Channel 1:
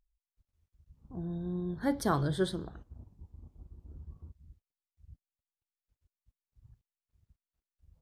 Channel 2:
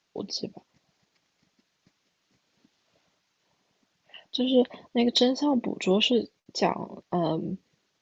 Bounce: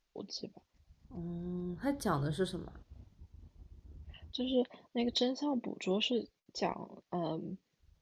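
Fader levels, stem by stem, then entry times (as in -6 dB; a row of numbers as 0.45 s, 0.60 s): -4.0 dB, -10.0 dB; 0.00 s, 0.00 s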